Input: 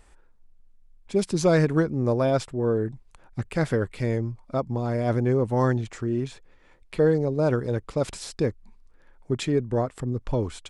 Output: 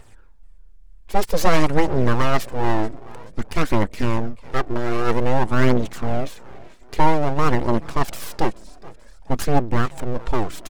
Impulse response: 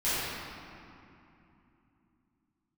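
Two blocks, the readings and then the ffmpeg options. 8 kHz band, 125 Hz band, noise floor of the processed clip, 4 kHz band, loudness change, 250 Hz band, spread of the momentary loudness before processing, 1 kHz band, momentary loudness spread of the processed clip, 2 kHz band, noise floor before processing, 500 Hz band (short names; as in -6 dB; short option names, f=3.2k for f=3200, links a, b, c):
+3.5 dB, +1.0 dB, -44 dBFS, +6.5 dB, +2.5 dB, +2.0 dB, 9 LU, +11.0 dB, 10 LU, +7.5 dB, -56 dBFS, 0.0 dB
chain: -filter_complex "[0:a]asplit=4[a][b][c][d];[b]adelay=431,afreqshift=40,volume=-21dB[e];[c]adelay=862,afreqshift=80,volume=-28.5dB[f];[d]adelay=1293,afreqshift=120,volume=-36.1dB[g];[a][e][f][g]amix=inputs=4:normalize=0,aeval=exprs='abs(val(0))':c=same,aphaser=in_gain=1:out_gain=1:delay=3.2:decay=0.38:speed=0.52:type=triangular,volume=6dB"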